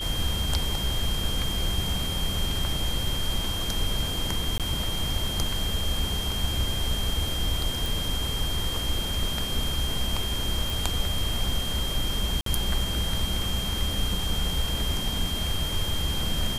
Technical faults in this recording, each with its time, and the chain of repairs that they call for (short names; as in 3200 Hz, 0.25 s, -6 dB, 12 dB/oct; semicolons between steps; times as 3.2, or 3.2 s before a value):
tone 3200 Hz -31 dBFS
4.58–4.6 gap 17 ms
7.86 pop
10.7 pop
12.41–12.46 gap 53 ms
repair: de-click; notch 3200 Hz, Q 30; interpolate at 4.58, 17 ms; interpolate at 12.41, 53 ms